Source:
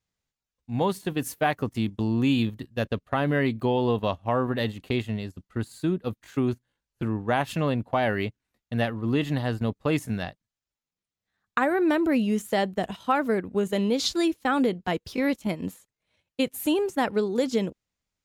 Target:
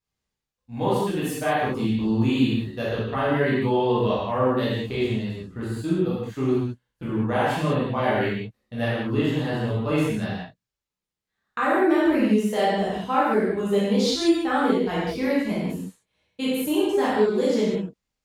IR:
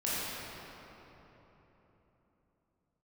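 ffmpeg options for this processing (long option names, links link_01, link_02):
-filter_complex "[1:a]atrim=start_sample=2205,afade=type=out:start_time=0.43:duration=0.01,atrim=end_sample=19404,asetrate=79380,aresample=44100[link_01];[0:a][link_01]afir=irnorm=-1:irlink=0"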